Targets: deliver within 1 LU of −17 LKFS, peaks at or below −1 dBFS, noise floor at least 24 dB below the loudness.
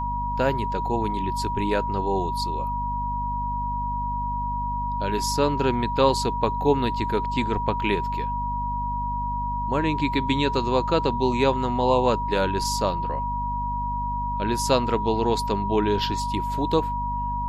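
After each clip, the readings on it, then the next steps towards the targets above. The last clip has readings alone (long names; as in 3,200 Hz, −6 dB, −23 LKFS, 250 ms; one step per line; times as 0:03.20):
mains hum 50 Hz; hum harmonics up to 250 Hz; level of the hum −29 dBFS; interfering tone 960 Hz; level of the tone −26 dBFS; integrated loudness −24.5 LKFS; sample peak −5.5 dBFS; target loudness −17.0 LKFS
→ hum removal 50 Hz, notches 5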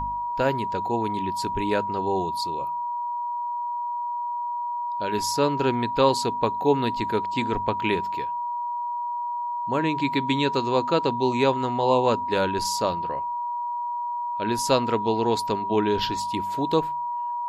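mains hum none found; interfering tone 960 Hz; level of the tone −26 dBFS
→ notch filter 960 Hz, Q 30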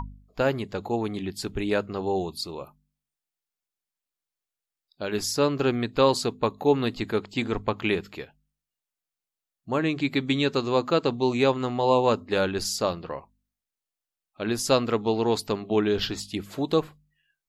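interfering tone none found; integrated loudness −26.0 LKFS; sample peak −7.0 dBFS; target loudness −17.0 LKFS
→ level +9 dB
brickwall limiter −1 dBFS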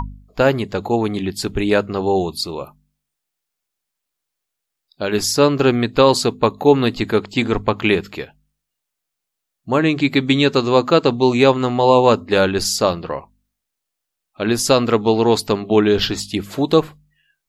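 integrated loudness −17.0 LKFS; sample peak −1.0 dBFS; background noise floor −80 dBFS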